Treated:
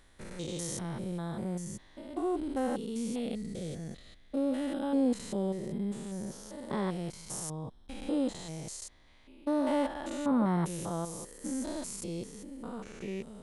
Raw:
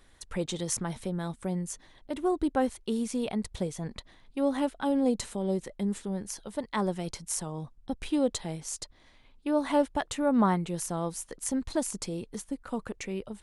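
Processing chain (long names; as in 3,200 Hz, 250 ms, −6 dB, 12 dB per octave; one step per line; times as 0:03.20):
spectrum averaged block by block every 200 ms
0:03.19–0:04.83: parametric band 970 Hz −13.5 dB 0.42 octaves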